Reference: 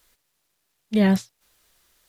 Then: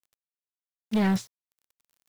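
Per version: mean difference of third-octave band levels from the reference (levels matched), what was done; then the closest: 3.5 dB: in parallel at -3 dB: compression, threshold -28 dBFS, peak gain reduction 13 dB; on the sum: overload inside the chain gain 16.5 dB; word length cut 8-bit, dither none; trim -3.5 dB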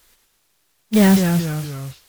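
7.5 dB: modulation noise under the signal 15 dB; saturation -11 dBFS, distortion -21 dB; ever faster or slower copies 89 ms, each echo -2 st, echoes 3, each echo -6 dB; trim +6.5 dB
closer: first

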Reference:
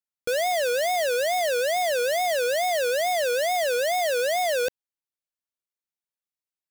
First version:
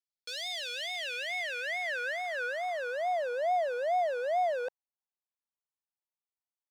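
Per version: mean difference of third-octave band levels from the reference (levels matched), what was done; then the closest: 8.5 dB: band-pass sweep 4.7 kHz -> 860 Hz, 0.06–3.32 s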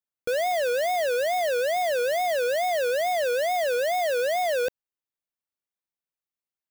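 2.0 dB: peaking EQ 7.6 kHz -6 dB 2.7 oct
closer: second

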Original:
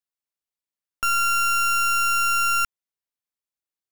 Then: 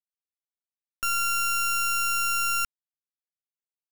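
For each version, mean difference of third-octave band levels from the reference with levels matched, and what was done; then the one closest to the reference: 2.0 dB: peaking EQ 920 Hz -3.5 dB 0.79 oct; power-law waveshaper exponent 3; treble shelf 7.5 kHz +4 dB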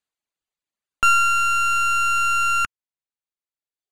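3.5 dB: band-stop 5.4 kHz, Q 5.3; reverb removal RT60 1.4 s; low-pass 7.5 kHz 12 dB/octave; trim +7.5 dB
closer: first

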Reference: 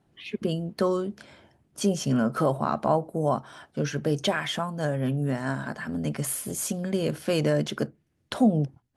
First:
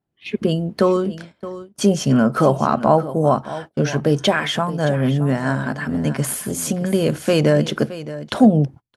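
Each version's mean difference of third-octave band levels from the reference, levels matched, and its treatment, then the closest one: 2.5 dB: delay 619 ms -14.5 dB; gate -42 dBFS, range -22 dB; treble shelf 5.6 kHz -4.5 dB; trim +8.5 dB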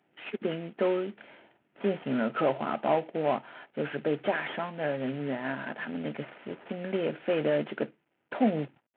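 8.5 dB: CVSD coder 16 kbps; high-pass 280 Hz 12 dB/octave; band-stop 1.1 kHz, Q 7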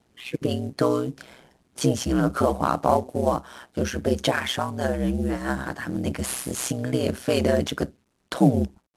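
6.5 dB: CVSD coder 64 kbps; high-pass 120 Hz; ring modulator 63 Hz; trim +6 dB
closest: first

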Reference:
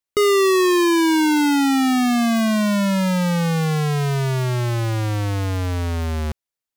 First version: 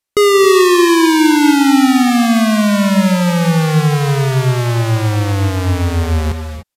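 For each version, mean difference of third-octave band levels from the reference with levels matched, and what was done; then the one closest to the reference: 2.5 dB: in parallel at -12 dB: wavefolder -26.5 dBFS; on the sum: gated-style reverb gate 320 ms rising, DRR 6 dB; resampled via 32 kHz; trim +6 dB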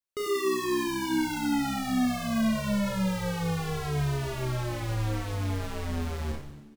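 9.0 dB: saturation -22.5 dBFS, distortion -15 dB; on a send: frequency-shifting echo 94 ms, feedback 59%, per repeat -74 Hz, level -10 dB; on the sum: Schroeder reverb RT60 0.3 s, combs from 28 ms, DRR 1 dB; trim -8 dB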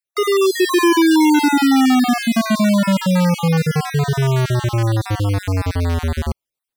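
5.0 dB: random holes in the spectrogram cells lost 38%; band-stop 6.7 kHz, Q 12; level rider gain up to 5 dB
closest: first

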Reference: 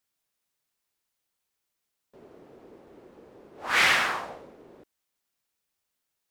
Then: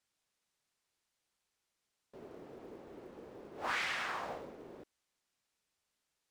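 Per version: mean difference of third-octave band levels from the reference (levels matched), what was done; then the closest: 9.5 dB: low-pass 8.9 kHz 12 dB/octave; compression 16:1, threshold -33 dBFS, peak gain reduction 16.5 dB; short-mantissa float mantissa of 4-bit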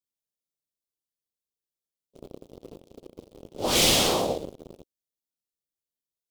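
6.5 dB: treble shelf 4.6 kHz +4 dB; waveshaping leveller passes 5; FFT filter 520 Hz 0 dB, 1.7 kHz -27 dB, 3.3 kHz -5 dB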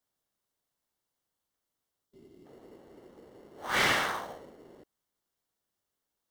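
3.0 dB: time-frequency box 2.05–2.46 s, 420–2900 Hz -14 dB; band-stop 2.5 kHz, Q 8.1; in parallel at -7 dB: sample-and-hold 18×; on the sum: trim -5 dB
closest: third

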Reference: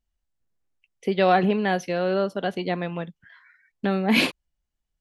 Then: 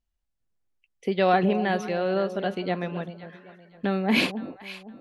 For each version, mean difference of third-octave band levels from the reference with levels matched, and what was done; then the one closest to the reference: 2.5 dB: treble shelf 9.1 kHz -5.5 dB; on a send: echo whose repeats swap between lows and highs 258 ms, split 800 Hz, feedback 54%, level -10 dB; on the sum: trim -2 dB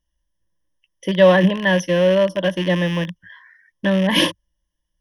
5.0 dB: rattle on loud lows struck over -35 dBFS, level -22 dBFS; rippled EQ curve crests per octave 1.2, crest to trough 17 dB; trim +2.5 dB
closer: first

